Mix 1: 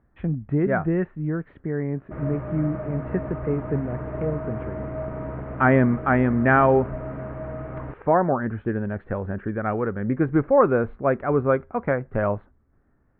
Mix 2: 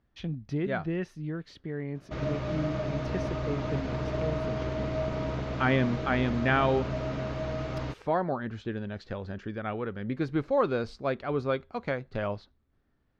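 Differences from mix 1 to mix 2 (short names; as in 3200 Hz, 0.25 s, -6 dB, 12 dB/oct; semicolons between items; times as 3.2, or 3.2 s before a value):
speech -8.5 dB; master: remove inverse Chebyshev low-pass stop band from 4600 Hz, stop band 50 dB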